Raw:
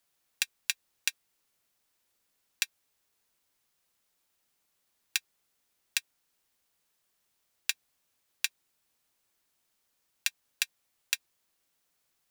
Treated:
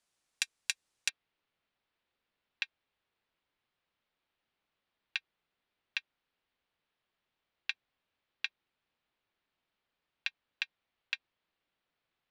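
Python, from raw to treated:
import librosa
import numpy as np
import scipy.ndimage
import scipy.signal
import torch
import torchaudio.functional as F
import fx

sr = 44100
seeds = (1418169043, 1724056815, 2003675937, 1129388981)

y = fx.lowpass(x, sr, hz=fx.steps((0.0, 9800.0), (1.09, 3700.0)), slope=24)
y = F.gain(torch.from_numpy(y), -2.5).numpy()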